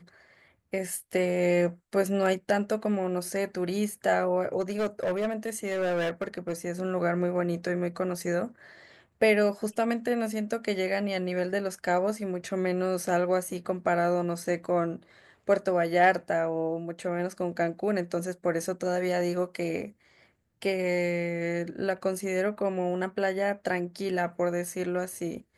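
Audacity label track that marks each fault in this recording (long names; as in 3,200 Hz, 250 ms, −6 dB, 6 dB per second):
4.600000	6.680000	clipping −24 dBFS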